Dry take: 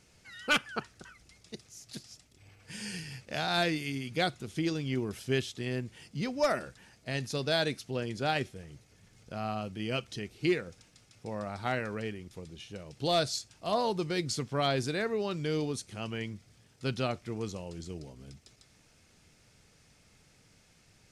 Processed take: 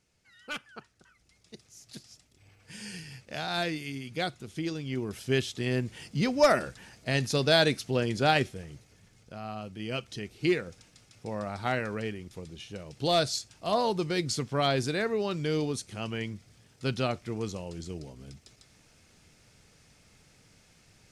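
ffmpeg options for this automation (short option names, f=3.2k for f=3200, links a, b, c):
-af "volume=13.5dB,afade=t=in:st=1.05:d=0.76:silence=0.375837,afade=t=in:st=4.86:d=1.1:silence=0.375837,afade=t=out:st=8.29:d=1.12:silence=0.281838,afade=t=in:st=9.41:d=1.2:silence=0.446684"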